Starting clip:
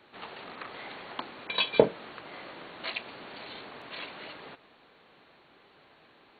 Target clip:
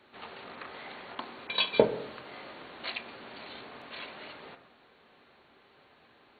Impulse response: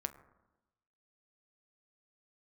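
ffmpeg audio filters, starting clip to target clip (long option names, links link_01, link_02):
-filter_complex "[1:a]atrim=start_sample=2205,asetrate=48510,aresample=44100[link_01];[0:a][link_01]afir=irnorm=-1:irlink=0,asettb=1/sr,asplit=3[link_02][link_03][link_04];[link_02]atrim=end=1.154[link_05];[link_03]atrim=start=1.15:end=2.92,asetpts=PTS-STARTPTS,afade=type=in:duration=0.004:curve=qsin,afade=type=out:start_time=1.766:duration=0.004:curve=qsin,adynamicequalizer=threshold=0.00562:dfrequency=3700:dqfactor=0.7:tfrequency=3700:tqfactor=0.7:attack=5:release=100:ratio=0.375:range=3:mode=boostabove:tftype=highshelf[link_06];[link_04]atrim=start=2.916[link_07];[link_05][link_06]acrossfade=duration=0.004:curve1=hsin:curve2=qsin[link_08];[link_08][link_07]acrossfade=duration=0.004:curve1=qsin:curve2=hsin"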